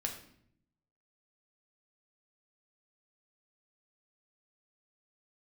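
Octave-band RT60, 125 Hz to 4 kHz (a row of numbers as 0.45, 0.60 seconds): 1.1, 1.0, 0.70, 0.60, 0.60, 0.55 seconds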